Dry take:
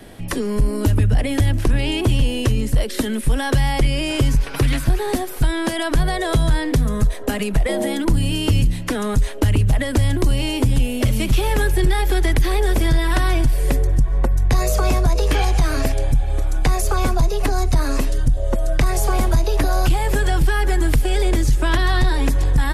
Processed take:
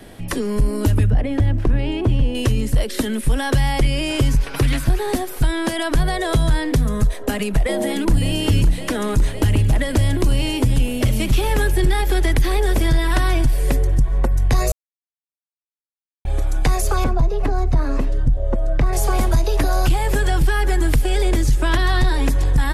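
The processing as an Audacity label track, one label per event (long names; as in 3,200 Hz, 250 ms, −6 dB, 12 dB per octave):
1.100000	2.350000	low-pass filter 1,200 Hz 6 dB per octave
7.320000	8.340000	delay throw 560 ms, feedback 80%, level −11 dB
14.720000	16.250000	silence
17.040000	18.930000	low-pass filter 1,200 Hz 6 dB per octave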